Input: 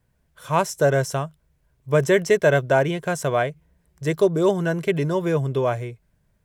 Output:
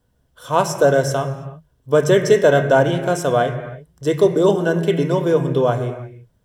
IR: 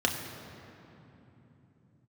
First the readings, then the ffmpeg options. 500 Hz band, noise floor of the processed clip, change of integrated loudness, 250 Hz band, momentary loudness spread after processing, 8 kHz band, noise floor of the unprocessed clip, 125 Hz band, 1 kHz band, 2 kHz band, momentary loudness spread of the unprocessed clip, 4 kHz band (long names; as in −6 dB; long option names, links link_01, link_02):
+5.0 dB, −63 dBFS, +4.5 dB, +4.5 dB, 13 LU, +3.0 dB, −67 dBFS, +3.0 dB, +4.5 dB, +1.5 dB, 10 LU, +5.0 dB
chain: -filter_complex "[0:a]asplit=2[link_01][link_02];[1:a]atrim=start_sample=2205,afade=type=out:start_time=0.39:duration=0.01,atrim=end_sample=17640[link_03];[link_02][link_03]afir=irnorm=-1:irlink=0,volume=-10.5dB[link_04];[link_01][link_04]amix=inputs=2:normalize=0"